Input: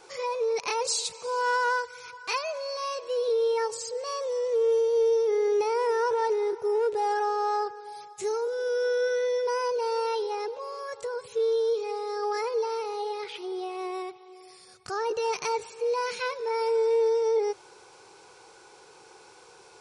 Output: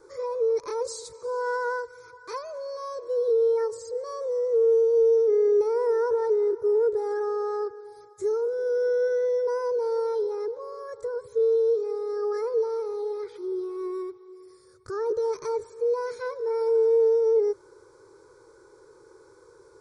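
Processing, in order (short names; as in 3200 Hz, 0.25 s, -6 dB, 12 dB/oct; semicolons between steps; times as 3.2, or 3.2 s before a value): tilt shelf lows +8 dB, about 730 Hz; fixed phaser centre 750 Hz, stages 6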